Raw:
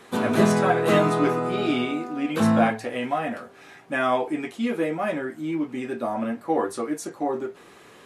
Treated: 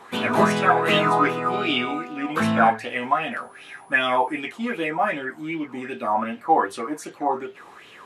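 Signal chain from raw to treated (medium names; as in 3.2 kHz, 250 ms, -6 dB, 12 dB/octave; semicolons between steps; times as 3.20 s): 3.31–4.39 s: whistle 10 kHz -56 dBFS; sweeping bell 2.6 Hz 850–3200 Hz +17 dB; trim -3 dB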